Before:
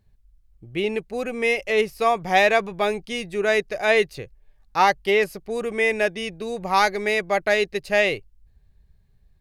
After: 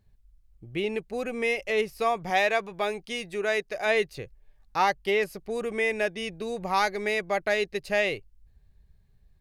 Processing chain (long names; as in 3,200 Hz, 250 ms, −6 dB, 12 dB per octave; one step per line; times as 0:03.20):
0:02.30–0:03.86: low-shelf EQ 260 Hz −7 dB
in parallel at −1 dB: downward compressor, threshold −28 dBFS, peak gain reduction 14.5 dB
on the sum: level −7.5 dB